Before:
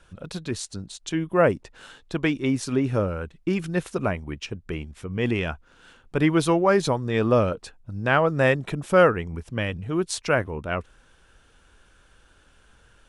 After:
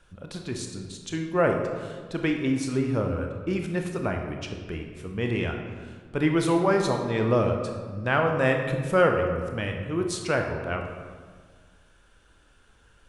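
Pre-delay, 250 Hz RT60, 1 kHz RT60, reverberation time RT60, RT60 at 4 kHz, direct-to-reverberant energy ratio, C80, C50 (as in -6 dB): 22 ms, 2.0 s, 1.6 s, 1.6 s, 1.0 s, 3.0 dB, 6.5 dB, 5.0 dB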